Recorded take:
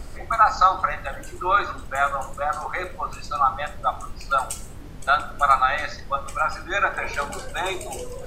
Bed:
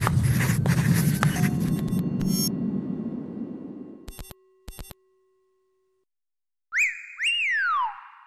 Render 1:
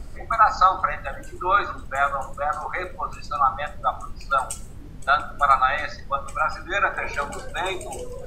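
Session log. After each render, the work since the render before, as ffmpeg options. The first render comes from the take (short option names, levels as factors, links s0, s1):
-af "afftdn=nr=6:nf=-38"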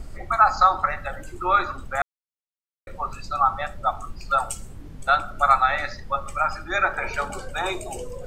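-filter_complex "[0:a]asplit=3[s0][s1][s2];[s0]atrim=end=2.02,asetpts=PTS-STARTPTS,afade=t=out:st=2.016:d=0.004:c=hsin[s3];[s1]atrim=start=2.02:end=2.87,asetpts=PTS-STARTPTS,volume=0[s4];[s2]atrim=start=2.87,asetpts=PTS-STARTPTS,afade=t=in:d=0.004:c=hsin[s5];[s3][s4][s5]concat=n=3:v=0:a=1"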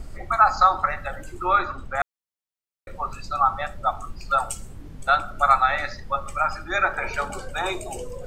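-filter_complex "[0:a]asettb=1/sr,asplit=3[s0][s1][s2];[s0]atrim=end=1.534[s3];[s1]atrim=start=1.53:end=2,asetpts=PTS-STARTPTS,afade=t=in:d=0.004:c=qsin,afade=t=out:st=0.466:d=0.004:c=qsin,highshelf=f=6500:g=-11[s4];[s2]atrim=start=1.996[s5];[s3][s4]acrossfade=d=0.004:c1=hsin:c2=qsin[s6];[s6][s5]acrossfade=d=0.004:c1=qsin:c2=hsin"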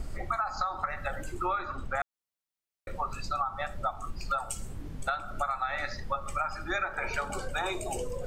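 -af "alimiter=limit=0.299:level=0:latency=1:release=195,acompressor=threshold=0.0398:ratio=6"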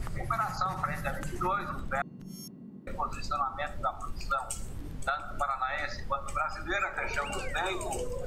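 -filter_complex "[1:a]volume=0.106[s0];[0:a][s0]amix=inputs=2:normalize=0"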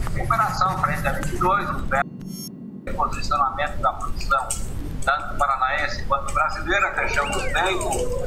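-af "volume=3.35"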